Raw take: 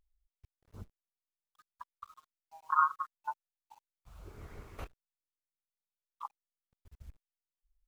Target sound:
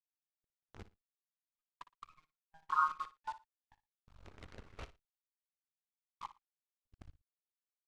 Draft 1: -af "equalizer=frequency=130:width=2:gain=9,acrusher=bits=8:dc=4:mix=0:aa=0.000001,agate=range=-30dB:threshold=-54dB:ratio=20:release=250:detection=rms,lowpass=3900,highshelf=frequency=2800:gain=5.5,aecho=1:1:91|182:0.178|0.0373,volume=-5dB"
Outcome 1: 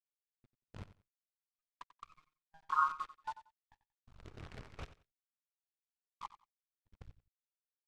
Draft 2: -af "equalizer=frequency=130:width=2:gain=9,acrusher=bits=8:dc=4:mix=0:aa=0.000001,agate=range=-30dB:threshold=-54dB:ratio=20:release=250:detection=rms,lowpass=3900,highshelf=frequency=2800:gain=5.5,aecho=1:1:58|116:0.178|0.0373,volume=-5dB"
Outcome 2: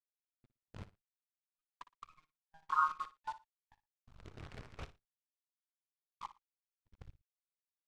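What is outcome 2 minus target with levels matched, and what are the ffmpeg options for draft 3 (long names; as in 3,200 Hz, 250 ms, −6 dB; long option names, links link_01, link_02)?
125 Hz band +5.5 dB
-af "acrusher=bits=8:dc=4:mix=0:aa=0.000001,agate=range=-30dB:threshold=-54dB:ratio=20:release=250:detection=rms,lowpass=3900,highshelf=frequency=2800:gain=5.5,aecho=1:1:58|116:0.178|0.0373,volume=-5dB"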